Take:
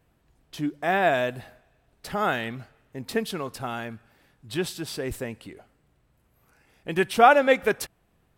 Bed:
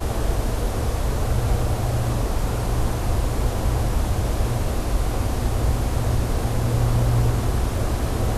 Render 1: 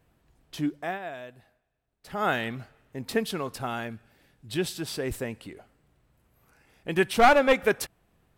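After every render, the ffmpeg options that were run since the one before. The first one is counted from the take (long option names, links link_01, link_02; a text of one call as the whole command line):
ffmpeg -i in.wav -filter_complex "[0:a]asettb=1/sr,asplit=3[link_01][link_02][link_03];[link_01]atrim=end=3.874[link_04];[link_02]atrim=start=3.87:end=4.72,asetpts=PTS-STARTPTS,afade=type=in:duration=0.004:curve=qsin,afade=type=out:start_time=0.846:duration=0.004:curve=qsin,equalizer=frequency=1100:width=1.5:gain=-5.5[link_05];[link_03]atrim=start=4.716[link_06];[link_04][link_05]acrossfade=duration=0.004:curve1=hsin:curve2=qsin[link_07];[link_07][link_06]acrossfade=duration=0.004:curve1=qsin:curve2=hsin,asplit=3[link_08][link_09][link_10];[link_08]afade=type=out:start_time=7.09:duration=0.02[link_11];[link_09]aeval=exprs='clip(val(0),-1,0.112)':channel_layout=same,afade=type=in:start_time=7.09:duration=0.02,afade=type=out:start_time=7.52:duration=0.02[link_12];[link_10]afade=type=in:start_time=7.52:duration=0.02[link_13];[link_11][link_12][link_13]amix=inputs=3:normalize=0,asplit=3[link_14][link_15][link_16];[link_14]atrim=end=0.99,asetpts=PTS-STARTPTS,afade=type=out:start_time=0.69:duration=0.3:silence=0.158489[link_17];[link_15]atrim=start=0.99:end=2.01,asetpts=PTS-STARTPTS,volume=-16dB[link_18];[link_16]atrim=start=2.01,asetpts=PTS-STARTPTS,afade=type=in:duration=0.3:silence=0.158489[link_19];[link_17][link_18][link_19]concat=n=3:v=0:a=1" out.wav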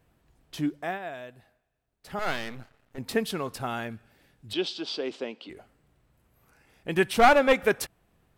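ffmpeg -i in.wav -filter_complex "[0:a]asettb=1/sr,asplit=3[link_01][link_02][link_03];[link_01]atrim=end=2.194[link_04];[link_02]atrim=start=2.19:end=2.98,asetpts=PTS-STARTPTS,afade=type=in:duration=0.004:curve=qsin,afade=type=out:start_time=0.786:duration=0.004:curve=qsin,aeval=exprs='max(val(0),0)':channel_layout=same[link_05];[link_03]atrim=start=2.976[link_06];[link_04][link_05]acrossfade=duration=0.004:curve1=hsin:curve2=qsin[link_07];[link_07][link_06]acrossfade=duration=0.004:curve1=qsin:curve2=hsin,asettb=1/sr,asplit=3[link_08][link_09][link_10];[link_08]atrim=end=4.534[link_11];[link_09]atrim=start=4.53:end=5.5,asetpts=PTS-STARTPTS,afade=type=in:duration=0.004:curve=qsin,afade=type=out:start_time=0.966:duration=0.004:curve=qsin,highpass=frequency=250:width=0.5412,highpass=frequency=250:width=1.3066,equalizer=frequency=1800:width_type=q:width=4:gain=-9,equalizer=frequency=3200:width_type=q:width=4:gain=8,equalizer=frequency=4700:width_type=q:width=4:gain=4,lowpass=frequency=5300:width=0.5412,lowpass=frequency=5300:width=1.3066[link_12];[link_10]atrim=start=5.496[link_13];[link_11][link_12]acrossfade=duration=0.004:curve1=hsin:curve2=qsin[link_14];[link_14][link_13]acrossfade=duration=0.004:curve1=qsin:curve2=hsin" out.wav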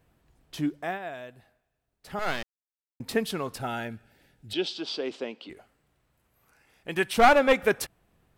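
ffmpeg -i in.wav -filter_complex "[0:a]asettb=1/sr,asplit=3[link_01][link_02][link_03];[link_01]atrim=end=3.614[link_04];[link_02]atrim=start=3.61:end=4.69,asetpts=PTS-STARTPTS,afade=type=in:duration=0.004:curve=qsin,afade=type=out:start_time=1.076:duration=0.004:curve=qsin,asuperstop=centerf=1100:order=20:qfactor=4.6[link_05];[link_03]atrim=start=4.686[link_06];[link_04][link_05]acrossfade=duration=0.004:curve1=hsin:curve2=qsin[link_07];[link_07][link_06]acrossfade=duration=0.004:curve1=qsin:curve2=hsin,asettb=1/sr,asplit=3[link_08][link_09][link_10];[link_08]atrim=end=5.534[link_11];[link_09]atrim=start=5.53:end=7.18,asetpts=PTS-STARTPTS,afade=type=in:duration=0.004:curve=qsin,afade=type=out:start_time=1.646:duration=0.004:curve=qsin,lowshelf=frequency=500:gain=-6.5[link_12];[link_10]atrim=start=7.176[link_13];[link_11][link_12]acrossfade=duration=0.004:curve1=hsin:curve2=qsin[link_14];[link_14][link_13]acrossfade=duration=0.004:curve1=qsin:curve2=hsin,asplit=3[link_15][link_16][link_17];[link_15]atrim=end=2.43,asetpts=PTS-STARTPTS,afade=type=out:start_time=2.426:duration=0.004:curve=hsin[link_18];[link_16]atrim=start=2.43:end=3,asetpts=PTS-STARTPTS,volume=0[link_19];[link_17]atrim=start=3,asetpts=PTS-STARTPTS,afade=type=in:duration=0.004:curve=hsin[link_20];[link_18][link_19][link_20]concat=n=3:v=0:a=1" out.wav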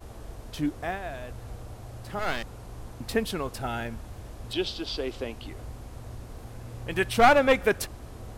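ffmpeg -i in.wav -i bed.wav -filter_complex "[1:a]volume=-19.5dB[link_01];[0:a][link_01]amix=inputs=2:normalize=0" out.wav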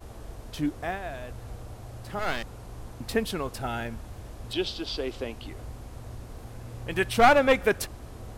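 ffmpeg -i in.wav -af anull out.wav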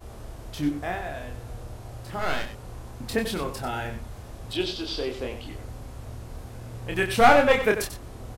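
ffmpeg -i in.wav -filter_complex "[0:a]asplit=2[link_01][link_02];[link_02]adelay=28,volume=-4dB[link_03];[link_01][link_03]amix=inputs=2:normalize=0,asplit=2[link_04][link_05];[link_05]aecho=0:1:93:0.316[link_06];[link_04][link_06]amix=inputs=2:normalize=0" out.wav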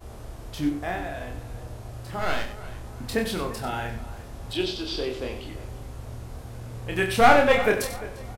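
ffmpeg -i in.wav -filter_complex "[0:a]asplit=2[link_01][link_02];[link_02]adelay=44,volume=-11dB[link_03];[link_01][link_03]amix=inputs=2:normalize=0,asplit=2[link_04][link_05];[link_05]adelay=347,lowpass=frequency=3600:poles=1,volume=-16dB,asplit=2[link_06][link_07];[link_07]adelay=347,lowpass=frequency=3600:poles=1,volume=0.34,asplit=2[link_08][link_09];[link_09]adelay=347,lowpass=frequency=3600:poles=1,volume=0.34[link_10];[link_04][link_06][link_08][link_10]amix=inputs=4:normalize=0" out.wav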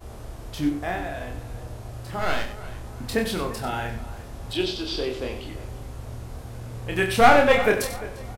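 ffmpeg -i in.wav -af "volume=1.5dB,alimiter=limit=-2dB:level=0:latency=1" out.wav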